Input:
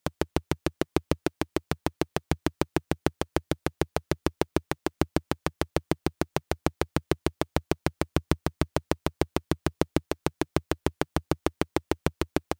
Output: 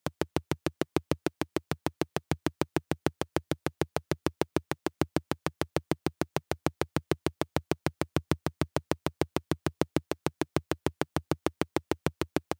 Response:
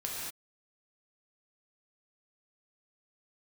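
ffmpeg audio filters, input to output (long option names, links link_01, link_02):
-af "highpass=frequency=84:width=0.5412,highpass=frequency=84:width=1.3066,volume=-2.5dB"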